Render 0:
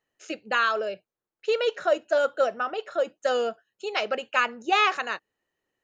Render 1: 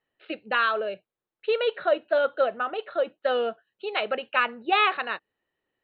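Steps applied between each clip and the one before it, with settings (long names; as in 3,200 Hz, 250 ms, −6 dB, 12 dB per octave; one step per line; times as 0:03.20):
Butterworth low-pass 4,100 Hz 96 dB per octave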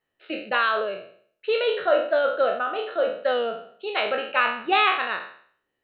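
peak hold with a decay on every bin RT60 0.55 s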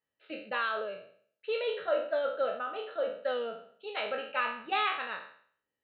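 notch comb filter 360 Hz
level −8.5 dB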